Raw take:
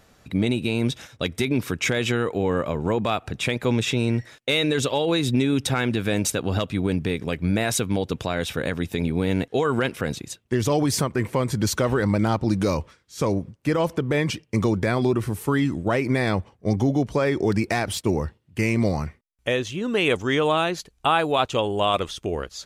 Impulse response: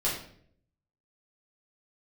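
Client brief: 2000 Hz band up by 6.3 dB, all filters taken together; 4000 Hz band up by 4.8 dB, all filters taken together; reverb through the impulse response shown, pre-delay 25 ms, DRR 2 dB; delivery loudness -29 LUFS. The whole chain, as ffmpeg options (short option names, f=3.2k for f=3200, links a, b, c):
-filter_complex "[0:a]equalizer=f=2k:t=o:g=7,equalizer=f=4k:t=o:g=3.5,asplit=2[a][b];[1:a]atrim=start_sample=2205,adelay=25[c];[b][c]afir=irnorm=-1:irlink=0,volume=-10.5dB[d];[a][d]amix=inputs=2:normalize=0,volume=-9dB"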